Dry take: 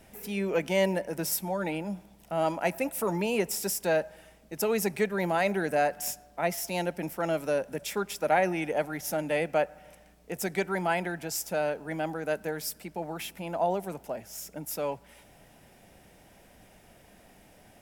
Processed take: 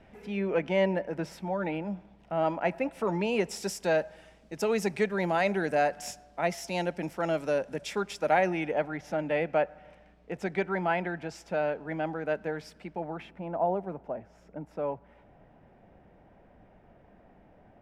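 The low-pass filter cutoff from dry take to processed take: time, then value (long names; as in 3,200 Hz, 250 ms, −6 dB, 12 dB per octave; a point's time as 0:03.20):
0:02.79 2,600 Hz
0:03.65 6,100 Hz
0:08.38 6,100 Hz
0:08.83 2,800 Hz
0:12.88 2,800 Hz
0:13.41 1,300 Hz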